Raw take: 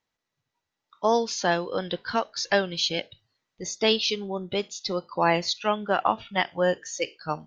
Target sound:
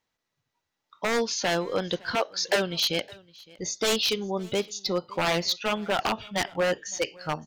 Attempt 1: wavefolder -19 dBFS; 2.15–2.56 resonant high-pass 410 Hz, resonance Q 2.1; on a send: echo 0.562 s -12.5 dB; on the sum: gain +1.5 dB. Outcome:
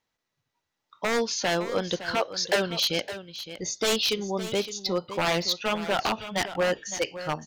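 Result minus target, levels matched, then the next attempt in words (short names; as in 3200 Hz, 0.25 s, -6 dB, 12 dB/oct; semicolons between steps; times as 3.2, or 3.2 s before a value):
echo-to-direct +11.5 dB
wavefolder -19 dBFS; 2.15–2.56 resonant high-pass 410 Hz, resonance Q 2.1; on a send: echo 0.562 s -24 dB; on the sum: gain +1.5 dB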